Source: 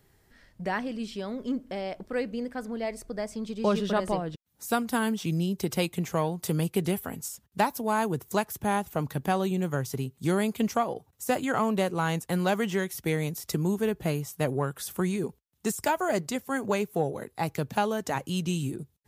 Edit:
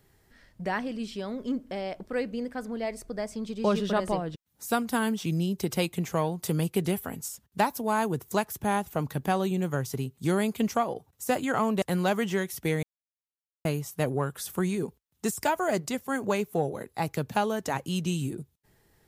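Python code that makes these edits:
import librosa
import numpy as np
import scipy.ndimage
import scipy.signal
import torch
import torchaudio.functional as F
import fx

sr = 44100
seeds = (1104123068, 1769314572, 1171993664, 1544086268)

y = fx.edit(x, sr, fx.cut(start_s=11.82, length_s=0.41),
    fx.silence(start_s=13.24, length_s=0.82), tone=tone)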